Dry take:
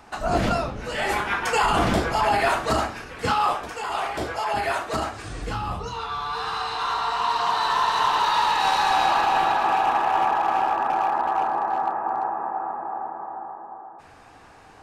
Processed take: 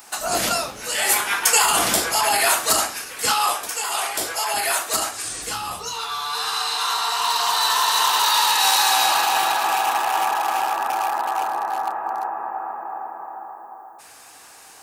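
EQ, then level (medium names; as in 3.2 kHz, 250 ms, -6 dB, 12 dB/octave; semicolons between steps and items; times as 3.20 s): RIAA curve recording; treble shelf 6.1 kHz +12 dB; 0.0 dB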